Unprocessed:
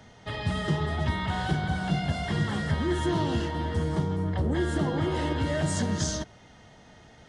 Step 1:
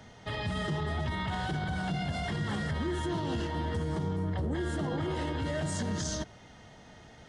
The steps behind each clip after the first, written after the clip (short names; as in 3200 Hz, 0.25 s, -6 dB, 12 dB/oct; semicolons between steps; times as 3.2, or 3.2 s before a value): limiter -24.5 dBFS, peak gain reduction 10 dB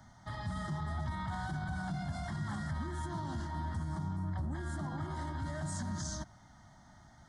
fixed phaser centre 1100 Hz, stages 4; gain -3 dB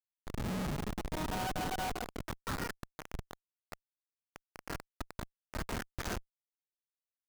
high-pass sweep 230 Hz -> 1500 Hz, 0.48–2.66; added harmonics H 2 -9 dB, 3 -20 dB, 7 -27 dB, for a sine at -26.5 dBFS; Schmitt trigger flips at -42.5 dBFS; gain +12.5 dB